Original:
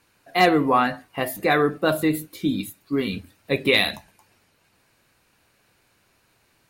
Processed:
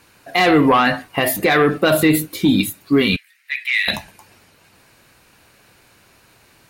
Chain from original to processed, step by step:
harmonic generator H 5 −17 dB, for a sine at −4.5 dBFS
dynamic equaliser 2,700 Hz, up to +6 dB, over −34 dBFS, Q 0.84
brickwall limiter −13 dBFS, peak gain reduction 11 dB
0:03.16–0:03.88: four-pole ladder high-pass 1,800 Hz, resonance 70%
level +6.5 dB

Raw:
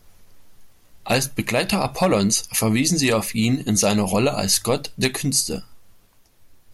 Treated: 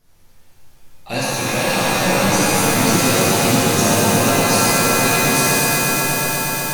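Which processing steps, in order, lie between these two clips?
echo that builds up and dies away 120 ms, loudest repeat 5, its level −11.5 dB
reverb with rising layers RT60 2.7 s, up +7 semitones, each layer −2 dB, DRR −9 dB
level −9 dB

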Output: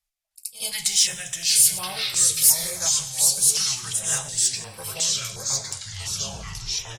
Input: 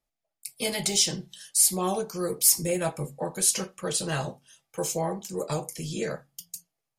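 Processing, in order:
turntable brake at the end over 1.60 s
downsampling to 32,000 Hz
soft clipping −12 dBFS, distortion −20 dB
delay with pitch and tempo change per echo 309 ms, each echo −3 semitones, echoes 3
guitar amp tone stack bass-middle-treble 10-0-10
backwards echo 75 ms −15 dB
convolution reverb RT60 1.0 s, pre-delay 99 ms, DRR 14 dB
notch on a step sequencer 2.8 Hz 370–6,700 Hz
level +6 dB

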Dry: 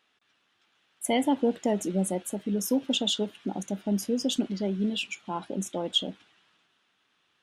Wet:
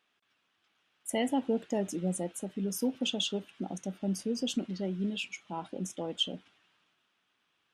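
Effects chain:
wrong playback speed 25 fps video run at 24 fps
level −5 dB

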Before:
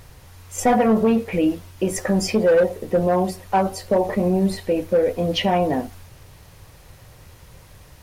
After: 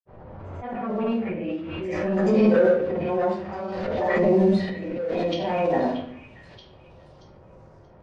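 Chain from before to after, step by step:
fade in at the beginning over 2.23 s
high-pass filter 110 Hz 6 dB per octave
low-shelf EQ 200 Hz −11.5 dB
downward compressor 3 to 1, threshold −23 dBFS, peak gain reduction 7 dB
transient designer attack −3 dB, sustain +1 dB
low-pass that shuts in the quiet parts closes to 650 Hz, open at −20.5 dBFS
granular cloud 100 ms, pitch spread up and down by 0 semitones
volume swells 407 ms
high-frequency loss of the air 110 metres
echo through a band-pass that steps 629 ms, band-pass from 2,600 Hz, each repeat 0.7 octaves, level −9.5 dB
rectangular room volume 88 cubic metres, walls mixed, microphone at 1.2 metres
background raised ahead of every attack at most 23 dB per second
level +1.5 dB

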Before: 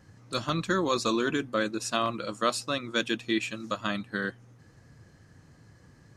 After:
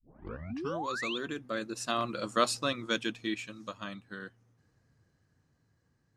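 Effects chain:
turntable start at the beginning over 0.89 s
source passing by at 0:02.46, 9 m/s, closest 4 metres
sound drawn into the spectrogram rise, 0:00.50–0:01.18, 210–3,800 Hz −37 dBFS

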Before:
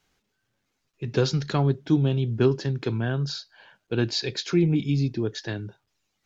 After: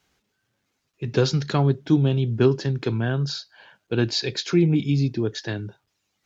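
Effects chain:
high-pass filter 40 Hz
level +2.5 dB

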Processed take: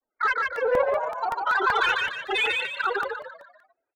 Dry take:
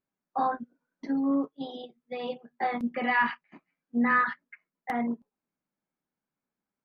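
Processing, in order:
low-pass filter 1,900 Hz 12 dB per octave
mains-hum notches 60/120/180/240 Hz
comb filter 2.3 ms, depth 31%
brickwall limiter −20.5 dBFS, peak gain reduction 6.5 dB
granular cloud, pitch spread up and down by 3 semitones
spectral peaks only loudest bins 16
mid-hump overdrive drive 11 dB, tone 1,100 Hz, clips at −23 dBFS
on a send: echo with shifted repeats 255 ms, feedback 40%, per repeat +33 Hz, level −3 dB
on the sum: wrong playback speed 45 rpm record played at 78 rpm
regular buffer underruns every 0.19 s, samples 64, repeat, from 0:00.56
level +8.5 dB

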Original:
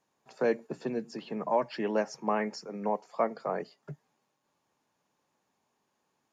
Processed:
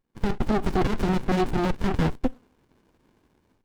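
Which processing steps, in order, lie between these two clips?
notch filter 6,100 Hz, Q 5.6
treble cut that deepens with the level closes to 2,000 Hz, closed at −25.5 dBFS
in parallel at −2 dB: downward compressor, threshold −36 dBFS, peak gain reduction 13.5 dB
on the sum: leveller curve on the samples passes 1
automatic gain control gain up to 16 dB
brickwall limiter −10.5 dBFS, peak gain reduction 8.5 dB
on a send at −23 dB: convolution reverb RT60 0.40 s, pre-delay 5 ms
on the sum: wrong playback speed 45 rpm record played at 78 rpm
windowed peak hold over 65 samples

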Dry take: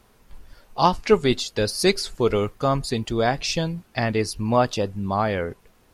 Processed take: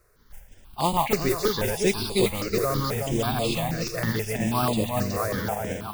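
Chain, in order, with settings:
feedback delay that plays each chunk backwards 185 ms, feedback 67%, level −1.5 dB
noise that follows the level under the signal 12 dB
step-sequenced phaser 6.2 Hz 860–5,700 Hz
level −3.5 dB

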